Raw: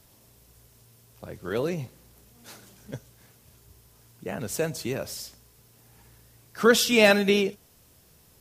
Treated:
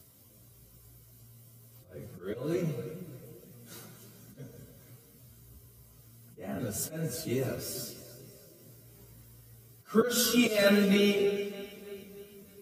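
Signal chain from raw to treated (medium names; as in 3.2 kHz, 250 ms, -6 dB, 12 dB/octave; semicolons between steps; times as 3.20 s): spring tank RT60 1.1 s, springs 32/43/47 ms, chirp 35 ms, DRR 8 dB; slow attack 154 ms; treble shelf 8.8 kHz +10 dB; comb of notches 860 Hz; on a send: two-band feedback delay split 430 Hz, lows 271 ms, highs 206 ms, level -15.5 dB; on the sum: plain phase-vocoder stretch 1.5×; bass shelf 380 Hz +7 dB; trim -2.5 dB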